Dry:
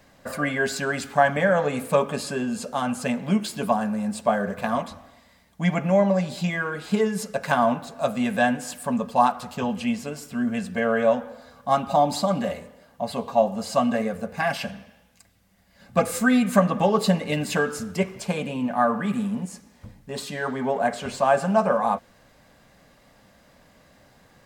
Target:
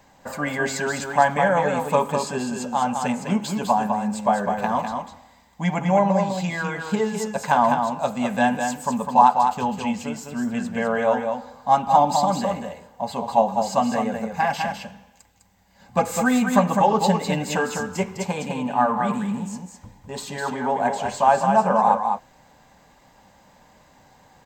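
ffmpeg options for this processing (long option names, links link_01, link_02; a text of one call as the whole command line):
ffmpeg -i in.wav -af "superequalizer=9b=2.82:15b=1.58:16b=0.316,aecho=1:1:204:0.531,volume=-1dB" out.wav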